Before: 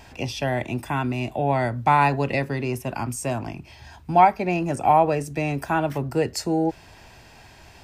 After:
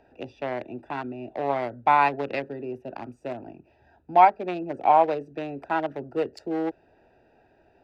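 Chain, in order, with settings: Wiener smoothing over 41 samples; three-band isolator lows -19 dB, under 300 Hz, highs -13 dB, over 5100 Hz

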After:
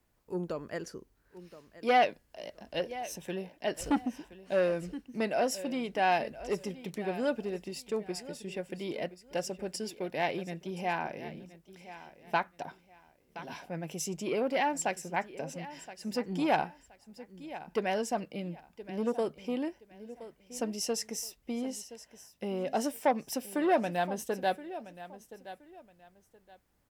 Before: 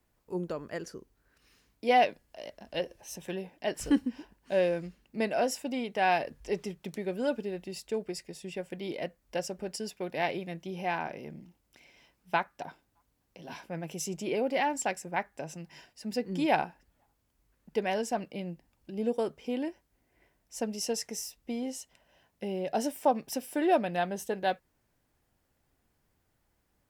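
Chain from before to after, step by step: on a send: feedback echo 1.022 s, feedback 25%, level -16 dB; on the sum: core saturation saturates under 840 Hz

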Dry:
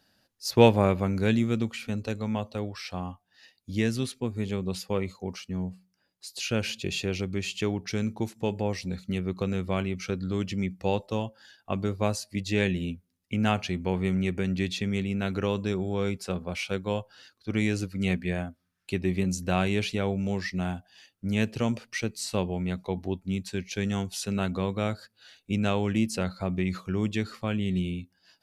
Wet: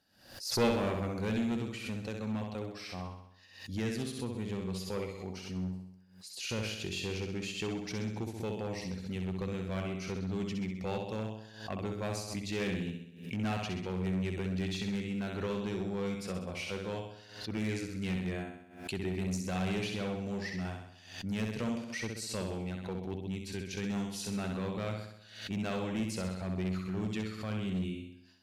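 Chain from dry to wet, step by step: flutter echo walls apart 11.1 m, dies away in 0.74 s; one-sided clip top -22 dBFS; backwards sustainer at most 93 dB/s; gain -7.5 dB

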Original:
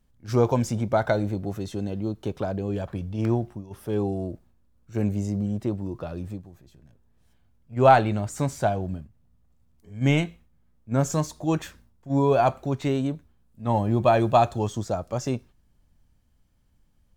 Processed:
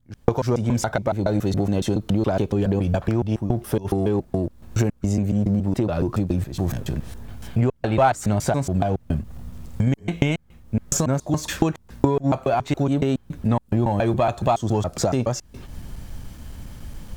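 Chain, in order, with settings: slices in reverse order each 0.14 s, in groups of 2; recorder AGC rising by 58 dB/s; in parallel at -7 dB: one-sided clip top -17.5 dBFS; on the sum: gain -4.5 dB

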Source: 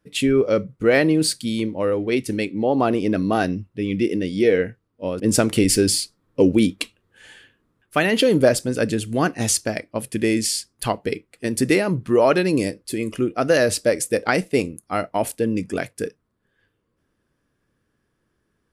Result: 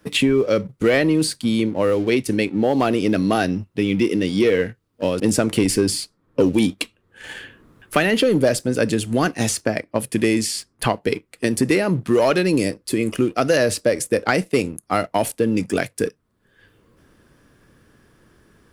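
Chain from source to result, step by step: sample leveller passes 1; three-band squash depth 70%; gain -2.5 dB

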